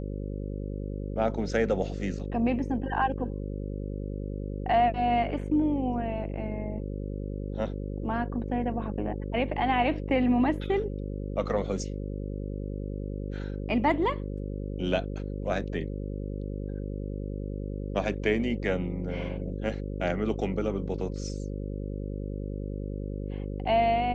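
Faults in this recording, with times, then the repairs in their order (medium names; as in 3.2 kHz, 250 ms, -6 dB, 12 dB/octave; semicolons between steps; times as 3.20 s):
buzz 50 Hz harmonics 11 -34 dBFS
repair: de-hum 50 Hz, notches 11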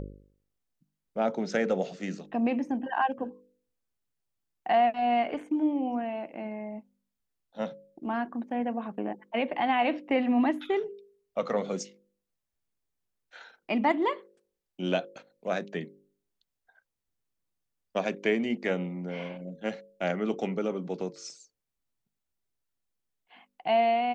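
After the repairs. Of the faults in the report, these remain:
nothing left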